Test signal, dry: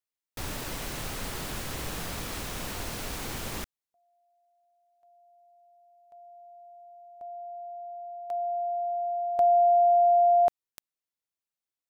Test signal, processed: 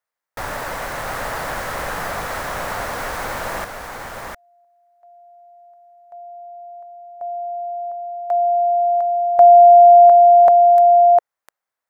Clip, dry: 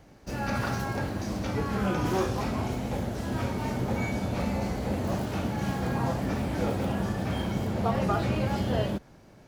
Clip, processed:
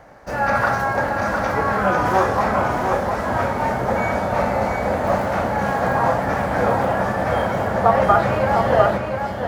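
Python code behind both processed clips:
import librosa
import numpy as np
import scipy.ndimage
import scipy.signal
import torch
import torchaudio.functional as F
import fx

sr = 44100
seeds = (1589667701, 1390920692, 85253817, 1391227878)

p1 = fx.band_shelf(x, sr, hz=1000.0, db=12.5, octaves=2.3)
p2 = p1 + fx.echo_single(p1, sr, ms=704, db=-5.0, dry=0)
y = p2 * librosa.db_to_amplitude(2.0)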